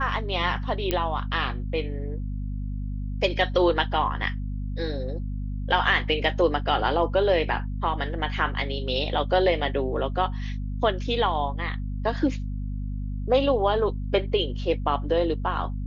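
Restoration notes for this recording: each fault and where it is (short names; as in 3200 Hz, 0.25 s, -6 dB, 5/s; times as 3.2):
hum 50 Hz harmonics 5 -30 dBFS
0.91 pop -10 dBFS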